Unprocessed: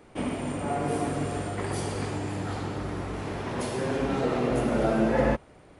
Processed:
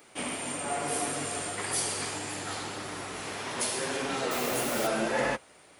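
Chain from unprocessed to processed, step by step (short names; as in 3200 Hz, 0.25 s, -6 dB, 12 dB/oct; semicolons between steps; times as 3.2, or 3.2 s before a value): tilt +4 dB/oct; 4.31–4.87 requantised 6-bit, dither triangular; flange 1.7 Hz, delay 6.4 ms, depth 6.9 ms, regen -43%; gain +3 dB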